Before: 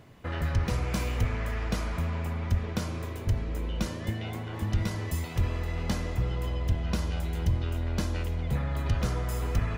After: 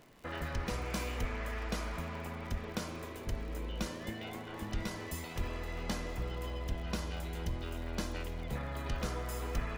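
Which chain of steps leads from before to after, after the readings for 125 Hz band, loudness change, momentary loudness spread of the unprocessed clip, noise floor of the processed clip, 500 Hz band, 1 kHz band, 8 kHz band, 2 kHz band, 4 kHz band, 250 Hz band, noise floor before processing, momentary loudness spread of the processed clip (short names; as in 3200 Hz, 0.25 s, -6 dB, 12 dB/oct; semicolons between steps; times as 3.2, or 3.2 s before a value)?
-12.0 dB, -8.5 dB, 4 LU, -45 dBFS, -4.0 dB, -3.5 dB, -3.5 dB, -3.5 dB, -3.5 dB, -6.5 dB, -37 dBFS, 4 LU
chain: bell 100 Hz -13 dB 1.2 oct; crackle 98/s -42 dBFS; gain -3.5 dB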